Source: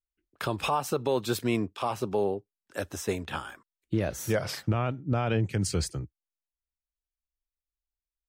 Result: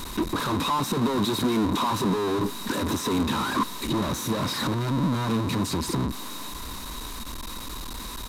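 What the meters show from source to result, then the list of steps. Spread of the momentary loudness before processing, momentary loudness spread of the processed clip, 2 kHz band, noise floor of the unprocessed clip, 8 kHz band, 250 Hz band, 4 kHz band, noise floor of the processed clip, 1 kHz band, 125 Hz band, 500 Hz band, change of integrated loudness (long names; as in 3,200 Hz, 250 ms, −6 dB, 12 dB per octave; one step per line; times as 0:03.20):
10 LU, 12 LU, +4.0 dB, below −85 dBFS, +5.0 dB, +8.0 dB, +9.5 dB, −36 dBFS, +6.5 dB, +2.0 dB, +0.5 dB, +3.5 dB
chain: sign of each sample alone
hollow resonant body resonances 240/1,000/3,800 Hz, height 17 dB, ringing for 20 ms
downsampling to 32,000 Hz
level −2.5 dB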